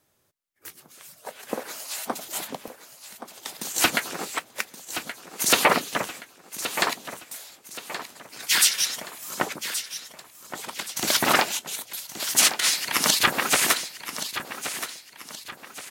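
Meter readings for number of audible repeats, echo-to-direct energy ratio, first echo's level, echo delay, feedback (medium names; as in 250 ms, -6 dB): 3, -10.5 dB, -11.0 dB, 1124 ms, 39%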